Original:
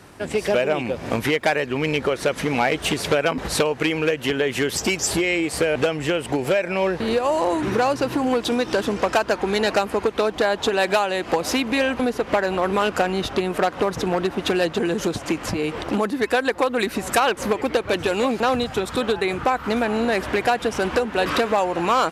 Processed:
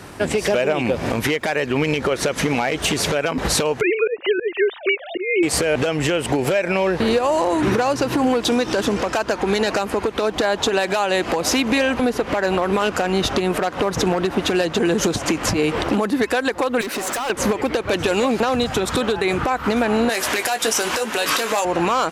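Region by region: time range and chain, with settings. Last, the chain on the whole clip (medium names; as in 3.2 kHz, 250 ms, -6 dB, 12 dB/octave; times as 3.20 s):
3.81–5.43 s: formants replaced by sine waves + slow attack 233 ms
16.81–17.30 s: high-pass 320 Hz + compression 4:1, threshold -21 dBFS + hard clipper -30.5 dBFS
20.09–21.65 s: RIAA curve recording + doubling 18 ms -8.5 dB
whole clip: dynamic bell 6.4 kHz, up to +4 dB, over -43 dBFS, Q 2.3; compression, threshold -22 dBFS; peak limiter -17 dBFS; trim +8 dB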